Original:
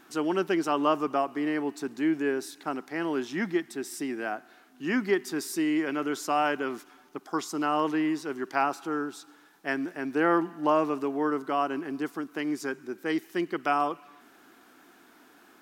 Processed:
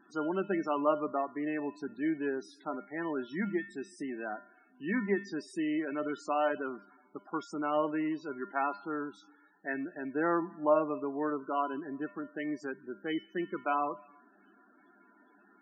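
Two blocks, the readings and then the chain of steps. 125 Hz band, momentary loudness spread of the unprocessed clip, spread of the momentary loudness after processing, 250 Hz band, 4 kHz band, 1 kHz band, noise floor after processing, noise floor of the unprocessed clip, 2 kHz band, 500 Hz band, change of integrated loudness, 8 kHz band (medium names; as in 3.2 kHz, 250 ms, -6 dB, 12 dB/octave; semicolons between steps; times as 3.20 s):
-4.0 dB, 9 LU, 11 LU, -5.5 dB, -11.0 dB, -5.5 dB, -64 dBFS, -57 dBFS, -6.0 dB, -3.5 dB, -5.0 dB, under -15 dB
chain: treble shelf 6.3 kHz -10 dB; feedback comb 200 Hz, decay 0.4 s, harmonics odd, mix 80%; loudest bins only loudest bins 32; trim +7.5 dB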